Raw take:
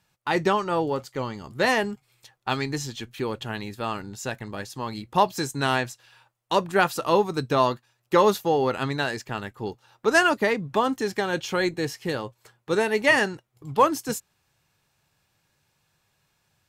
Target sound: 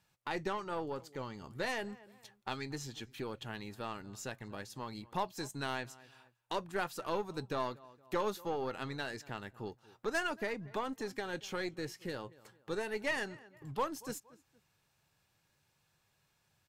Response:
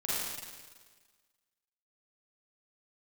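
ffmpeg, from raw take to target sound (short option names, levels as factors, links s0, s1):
-filter_complex "[0:a]asplit=2[s0][s1];[s1]adelay=232,lowpass=f=3000:p=1,volume=0.0631,asplit=2[s2][s3];[s3]adelay=232,lowpass=f=3000:p=1,volume=0.26[s4];[s0][s2][s4]amix=inputs=3:normalize=0,aeval=exprs='0.473*(cos(1*acos(clip(val(0)/0.473,-1,1)))-cos(1*PI/2))+0.0335*(cos(6*acos(clip(val(0)/0.473,-1,1)))-cos(6*PI/2))':c=same,acompressor=threshold=0.00631:ratio=1.5,volume=0.531"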